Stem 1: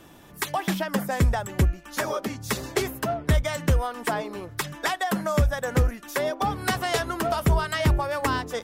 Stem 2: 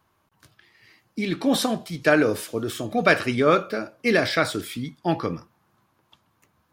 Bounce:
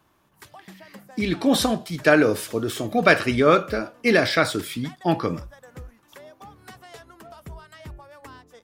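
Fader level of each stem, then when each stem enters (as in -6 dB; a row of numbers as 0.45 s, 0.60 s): -19.0 dB, +2.0 dB; 0.00 s, 0.00 s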